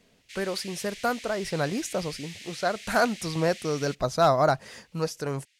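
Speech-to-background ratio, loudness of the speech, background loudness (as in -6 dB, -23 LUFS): 14.5 dB, -27.5 LUFS, -42.0 LUFS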